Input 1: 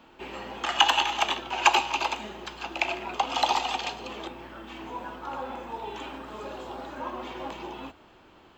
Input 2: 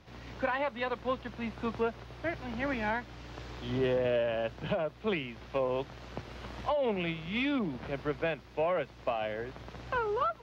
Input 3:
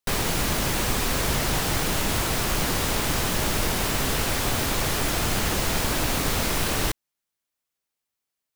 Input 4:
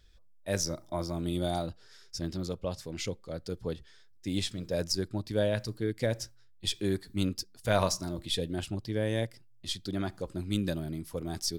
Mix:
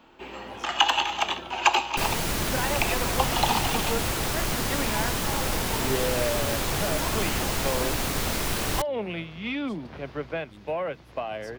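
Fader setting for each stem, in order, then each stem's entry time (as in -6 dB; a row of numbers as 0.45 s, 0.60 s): -0.5 dB, +0.5 dB, -3.0 dB, -20.0 dB; 0.00 s, 2.10 s, 1.90 s, 0.00 s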